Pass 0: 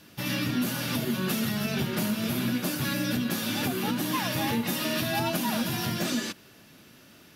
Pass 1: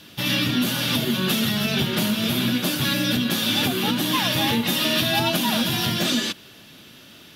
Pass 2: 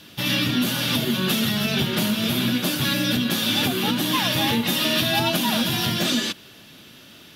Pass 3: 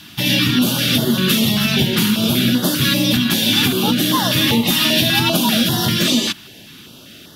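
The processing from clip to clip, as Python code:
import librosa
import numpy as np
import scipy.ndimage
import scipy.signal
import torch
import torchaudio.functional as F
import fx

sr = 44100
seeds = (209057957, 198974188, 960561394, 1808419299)

y1 = fx.peak_eq(x, sr, hz=3400.0, db=9.0, octaves=0.61)
y1 = F.gain(torch.from_numpy(y1), 5.0).numpy()
y2 = y1
y3 = fx.filter_held_notch(y2, sr, hz=5.1, low_hz=500.0, high_hz=2400.0)
y3 = F.gain(torch.from_numpy(y3), 7.0).numpy()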